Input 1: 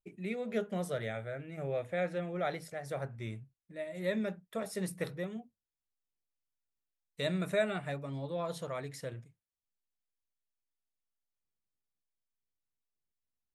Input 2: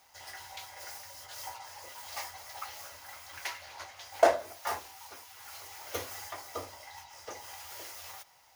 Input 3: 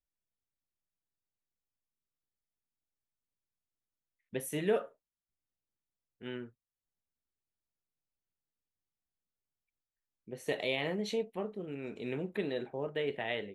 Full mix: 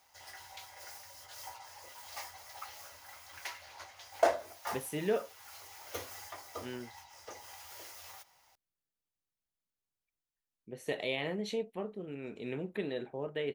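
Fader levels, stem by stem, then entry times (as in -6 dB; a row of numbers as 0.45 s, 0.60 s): mute, -4.5 dB, -1.5 dB; mute, 0.00 s, 0.40 s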